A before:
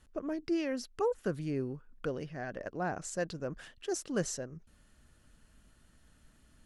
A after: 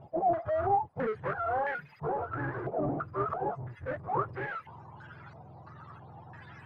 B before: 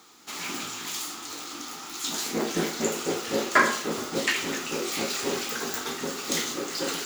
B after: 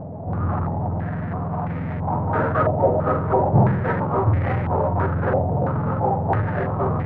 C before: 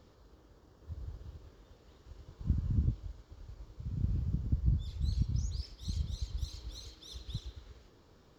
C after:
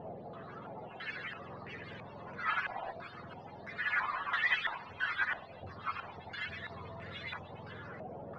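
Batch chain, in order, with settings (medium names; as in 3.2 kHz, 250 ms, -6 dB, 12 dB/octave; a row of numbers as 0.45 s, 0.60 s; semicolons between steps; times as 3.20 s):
spectrum inverted on a logarithmic axis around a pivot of 460 Hz; power-law waveshaper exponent 0.5; step-sequenced low-pass 3 Hz 710–2000 Hz; trim -3.5 dB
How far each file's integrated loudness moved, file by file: +4.0 LU, +6.0 LU, -0.5 LU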